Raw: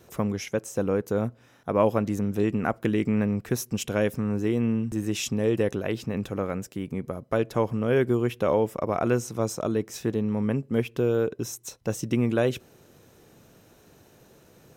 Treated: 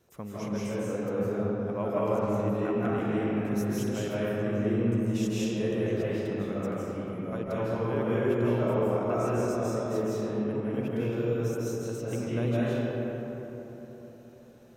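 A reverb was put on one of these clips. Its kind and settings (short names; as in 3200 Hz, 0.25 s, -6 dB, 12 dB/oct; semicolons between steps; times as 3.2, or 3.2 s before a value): digital reverb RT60 4 s, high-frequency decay 0.4×, pre-delay 0.12 s, DRR -9 dB; gain -13 dB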